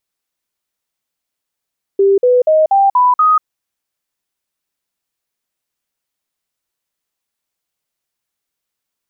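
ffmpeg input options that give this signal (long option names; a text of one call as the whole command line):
ffmpeg -f lavfi -i "aevalsrc='0.447*clip(min(mod(t,0.24),0.19-mod(t,0.24))/0.005,0,1)*sin(2*PI*394*pow(2,floor(t/0.24)/3)*mod(t,0.24))':duration=1.44:sample_rate=44100" out.wav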